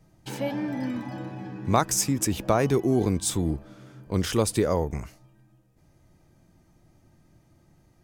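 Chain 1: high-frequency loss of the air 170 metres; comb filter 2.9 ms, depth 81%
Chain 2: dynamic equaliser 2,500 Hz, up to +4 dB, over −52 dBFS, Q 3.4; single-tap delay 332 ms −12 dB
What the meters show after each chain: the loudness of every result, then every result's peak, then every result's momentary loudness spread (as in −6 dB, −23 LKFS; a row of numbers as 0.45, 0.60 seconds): −25.5, −26.0 LKFS; −7.5, −6.5 dBFS; 14, 14 LU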